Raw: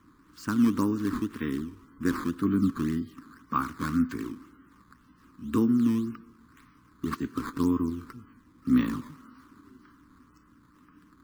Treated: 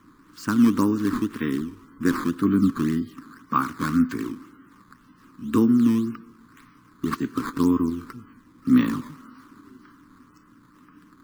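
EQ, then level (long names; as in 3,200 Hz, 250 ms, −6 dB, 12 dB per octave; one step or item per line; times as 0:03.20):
parametric band 66 Hz −12.5 dB 0.63 octaves
+5.5 dB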